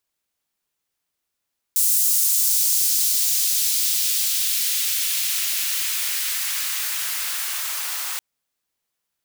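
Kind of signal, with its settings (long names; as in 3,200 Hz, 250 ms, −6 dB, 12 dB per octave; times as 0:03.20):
filter sweep on noise white, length 6.43 s highpass, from 7,700 Hz, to 1,000 Hz, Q 0.99, exponential, gain ramp −10.5 dB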